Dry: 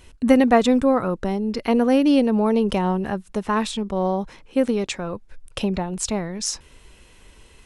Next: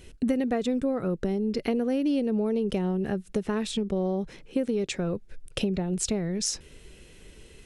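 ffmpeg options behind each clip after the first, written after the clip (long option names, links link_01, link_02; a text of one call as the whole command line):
ffmpeg -i in.wav -af "equalizer=frequency=160:width_type=o:width=0.67:gain=6,equalizer=frequency=400:width_type=o:width=0.67:gain=6,equalizer=frequency=1000:width_type=o:width=0.67:gain=-10,acompressor=threshold=-23dB:ratio=5,volume=-1dB" out.wav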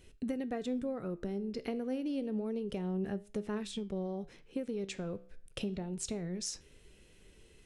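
ffmpeg -i in.wav -af "flanger=delay=9.6:depth=6.2:regen=82:speed=0.29:shape=sinusoidal,volume=-5.5dB" out.wav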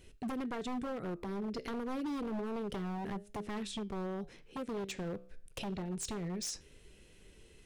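ffmpeg -i in.wav -af "aeval=exprs='0.0211*(abs(mod(val(0)/0.0211+3,4)-2)-1)':channel_layout=same,volume=1dB" out.wav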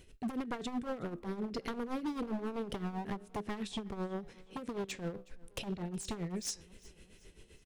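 ffmpeg -i in.wav -af "tremolo=f=7.7:d=0.71,aecho=1:1:368|736|1104:0.0708|0.0304|0.0131,volume=3dB" out.wav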